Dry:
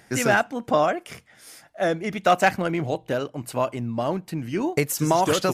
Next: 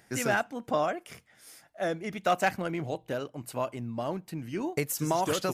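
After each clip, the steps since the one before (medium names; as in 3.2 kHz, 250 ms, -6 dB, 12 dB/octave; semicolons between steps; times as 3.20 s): treble shelf 11 kHz +5.5 dB; trim -7.5 dB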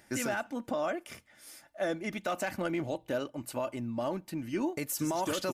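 comb 3.4 ms, depth 42%; peak limiter -23 dBFS, peak gain reduction 10.5 dB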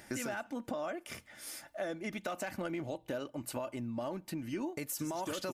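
compression 3:1, threshold -45 dBFS, peak gain reduction 13 dB; trim +6 dB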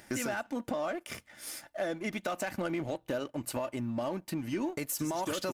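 saturation -31.5 dBFS, distortion -18 dB; power-law waveshaper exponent 1.4; trim +7.5 dB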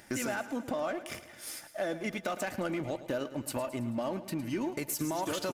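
feedback delay 109 ms, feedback 57%, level -14 dB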